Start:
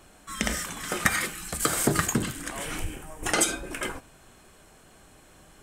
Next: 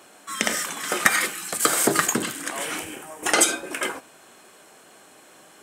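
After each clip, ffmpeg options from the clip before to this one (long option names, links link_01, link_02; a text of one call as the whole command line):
ffmpeg -i in.wav -af "highpass=300,volume=5.5dB" out.wav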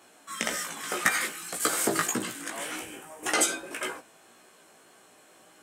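ffmpeg -i in.wav -af "flanger=delay=16:depth=2.3:speed=1.8,volume=-3dB" out.wav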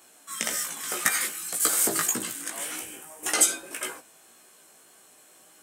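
ffmpeg -i in.wav -af "crystalizer=i=2:c=0,volume=-3.5dB" out.wav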